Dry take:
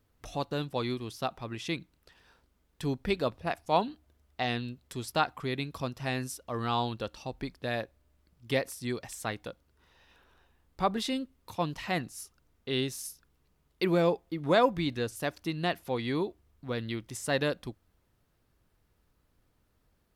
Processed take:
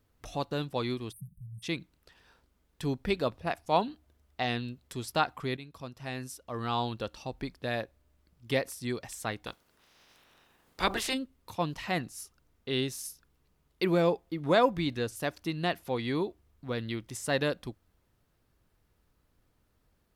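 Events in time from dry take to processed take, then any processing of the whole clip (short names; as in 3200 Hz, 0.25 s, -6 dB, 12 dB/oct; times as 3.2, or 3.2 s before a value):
1.12–1.63 spectral delete 210–8300 Hz
5.57–7 fade in, from -12 dB
9.46–11.13 spectral limiter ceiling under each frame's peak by 22 dB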